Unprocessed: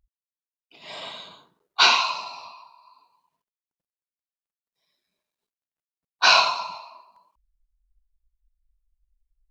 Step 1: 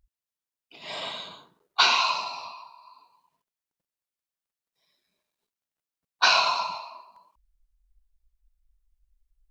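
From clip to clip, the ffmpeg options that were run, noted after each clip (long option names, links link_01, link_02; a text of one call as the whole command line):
ffmpeg -i in.wav -af "acompressor=threshold=-19dB:ratio=6,volume=2.5dB" out.wav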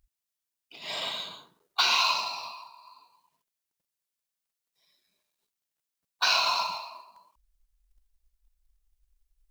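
ffmpeg -i in.wav -af "highshelf=frequency=2700:gain=7,alimiter=limit=-10.5dB:level=0:latency=1:release=186,acrusher=bits=6:mode=log:mix=0:aa=0.000001,volume=-2dB" out.wav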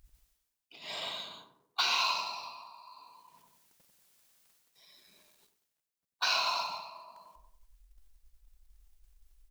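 ffmpeg -i in.wav -filter_complex "[0:a]asplit=2[link_01][link_02];[link_02]adelay=93,lowpass=frequency=1100:poles=1,volume=-6.5dB,asplit=2[link_03][link_04];[link_04]adelay=93,lowpass=frequency=1100:poles=1,volume=0.48,asplit=2[link_05][link_06];[link_06]adelay=93,lowpass=frequency=1100:poles=1,volume=0.48,asplit=2[link_07][link_08];[link_08]adelay=93,lowpass=frequency=1100:poles=1,volume=0.48,asplit=2[link_09][link_10];[link_10]adelay=93,lowpass=frequency=1100:poles=1,volume=0.48,asplit=2[link_11][link_12];[link_12]adelay=93,lowpass=frequency=1100:poles=1,volume=0.48[link_13];[link_01][link_03][link_05][link_07][link_09][link_11][link_13]amix=inputs=7:normalize=0,areverse,acompressor=mode=upward:threshold=-40dB:ratio=2.5,areverse,volume=-5.5dB" out.wav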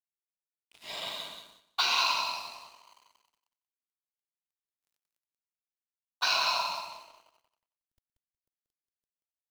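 ffmpeg -i in.wav -af "aeval=exprs='sgn(val(0))*max(abs(val(0))-0.00299,0)':channel_layout=same,aecho=1:1:183|366|549:0.447|0.0715|0.0114,volume=2.5dB" out.wav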